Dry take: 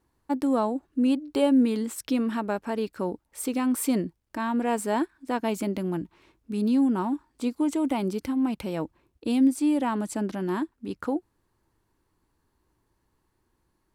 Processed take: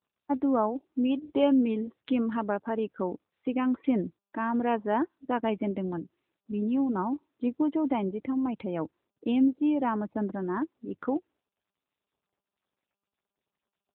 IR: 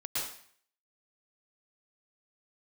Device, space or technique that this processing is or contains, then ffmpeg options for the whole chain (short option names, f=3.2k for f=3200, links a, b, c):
mobile call with aggressive noise cancelling: -af "highpass=f=130:p=1,afftdn=nr=28:nf=-41" -ar 8000 -c:a libopencore_amrnb -b:a 10200